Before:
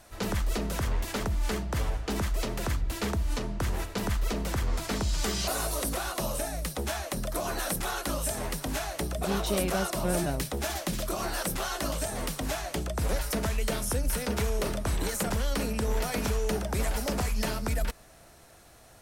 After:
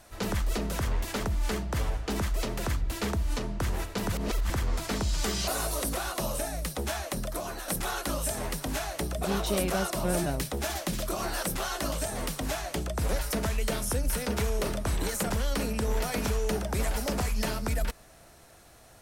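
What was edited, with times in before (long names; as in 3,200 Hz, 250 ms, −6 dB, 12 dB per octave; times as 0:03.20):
0:04.12–0:04.50: reverse
0:07.17–0:07.68: fade out, to −8.5 dB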